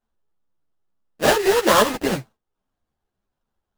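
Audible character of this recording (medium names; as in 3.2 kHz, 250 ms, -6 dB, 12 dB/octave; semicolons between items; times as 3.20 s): aliases and images of a low sample rate 2.3 kHz, jitter 20%; a shimmering, thickened sound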